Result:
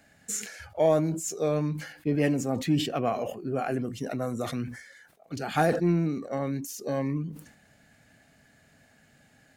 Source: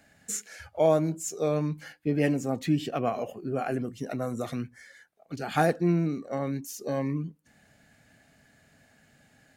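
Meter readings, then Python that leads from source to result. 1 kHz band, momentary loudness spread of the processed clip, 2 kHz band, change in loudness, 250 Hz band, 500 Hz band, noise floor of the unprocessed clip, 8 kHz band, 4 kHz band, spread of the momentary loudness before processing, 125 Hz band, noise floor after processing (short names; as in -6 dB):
0.0 dB, 11 LU, +0.5 dB, +0.5 dB, +0.5 dB, +0.5 dB, -63 dBFS, +1.5 dB, +4.5 dB, 10 LU, +0.5 dB, -61 dBFS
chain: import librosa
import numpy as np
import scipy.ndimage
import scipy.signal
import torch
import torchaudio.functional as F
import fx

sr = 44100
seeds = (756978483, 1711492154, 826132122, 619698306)

p1 = 10.0 ** (-19.0 / 20.0) * np.tanh(x / 10.0 ** (-19.0 / 20.0))
p2 = x + F.gain(torch.from_numpy(p1), -9.5).numpy()
p3 = fx.sustainer(p2, sr, db_per_s=89.0)
y = F.gain(torch.from_numpy(p3), -2.0).numpy()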